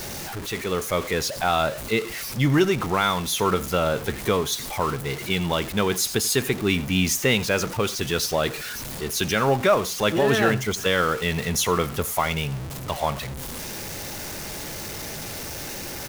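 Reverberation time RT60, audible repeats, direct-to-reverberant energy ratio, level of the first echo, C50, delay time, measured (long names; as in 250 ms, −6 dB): no reverb audible, 1, no reverb audible, −19.5 dB, no reverb audible, 86 ms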